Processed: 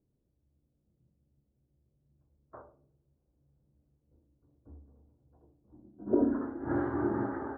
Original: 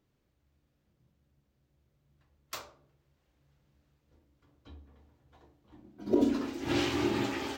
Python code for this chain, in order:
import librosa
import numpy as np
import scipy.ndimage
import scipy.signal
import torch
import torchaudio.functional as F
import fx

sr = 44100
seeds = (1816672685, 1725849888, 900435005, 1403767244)

y = scipy.signal.sosfilt(scipy.signal.ellip(4, 1.0, 40, 1600.0, 'lowpass', fs=sr, output='sos'), x)
y = fx.env_lowpass(y, sr, base_hz=440.0, full_db=-27.5)